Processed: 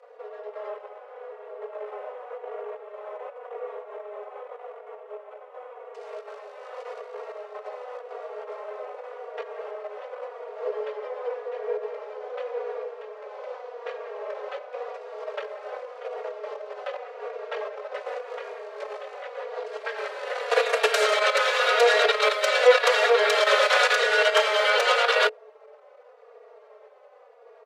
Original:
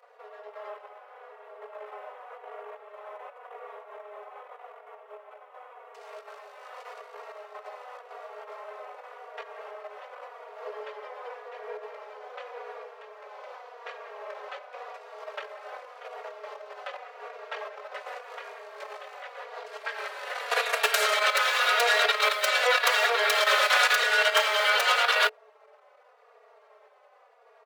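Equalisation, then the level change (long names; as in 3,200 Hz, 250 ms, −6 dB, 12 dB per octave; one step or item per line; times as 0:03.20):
low-pass filter 8,500 Hz 12 dB per octave
low-shelf EQ 370 Hz +7 dB
parametric band 490 Hz +10 dB 0.54 octaves
0.0 dB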